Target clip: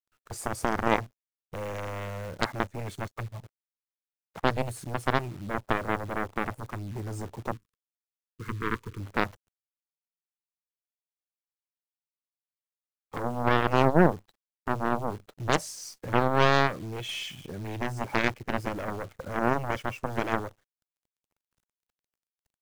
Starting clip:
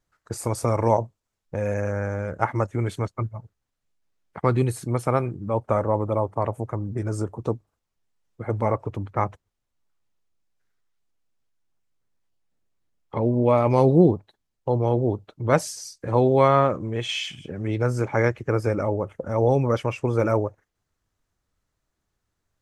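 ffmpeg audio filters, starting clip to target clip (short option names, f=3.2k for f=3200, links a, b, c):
-filter_complex "[0:a]asplit=2[a][b];[b]acompressor=threshold=-30dB:ratio=12,volume=-3dB[c];[a][c]amix=inputs=2:normalize=0,aeval=exprs='0.794*(cos(1*acos(clip(val(0)/0.794,-1,1)))-cos(1*PI/2))+0.0631*(cos(5*acos(clip(val(0)/0.794,-1,1)))-cos(5*PI/2))+0.0178*(cos(6*acos(clip(val(0)/0.794,-1,1)))-cos(6*PI/2))+0.251*(cos(7*acos(clip(val(0)/0.794,-1,1)))-cos(7*PI/2))':c=same,acrusher=bits=8:dc=4:mix=0:aa=0.000001,asettb=1/sr,asplit=3[d][e][f];[d]atrim=end=7.544[g];[e]atrim=start=7.54:end=9,asetpts=PTS-STARTPTS,afade=t=in:d=0.004:c=qsin,afade=t=out:st=1.456:d=0.004:c=qsin,asuperstop=centerf=680:order=8:qfactor=1.3[h];[f]atrim=start=8.996[i];[g][h]acrossfade=d=0.004:c1=hsin:c2=qsin[j];[j][i]acrossfade=d=0.004:c1=qsin:c2=hsin,volume=-5.5dB"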